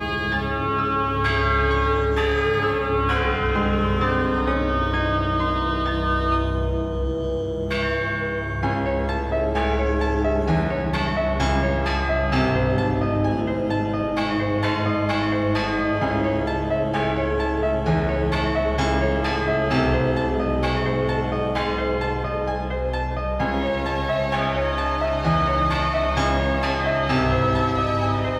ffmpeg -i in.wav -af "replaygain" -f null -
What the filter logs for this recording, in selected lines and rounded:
track_gain = +5.8 dB
track_peak = 0.280